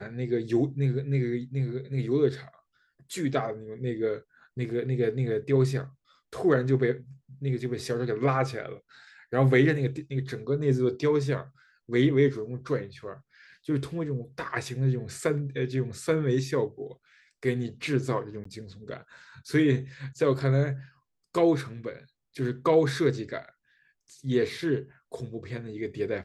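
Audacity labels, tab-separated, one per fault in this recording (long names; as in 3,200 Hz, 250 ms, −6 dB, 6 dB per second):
18.440000	18.450000	drop-out 14 ms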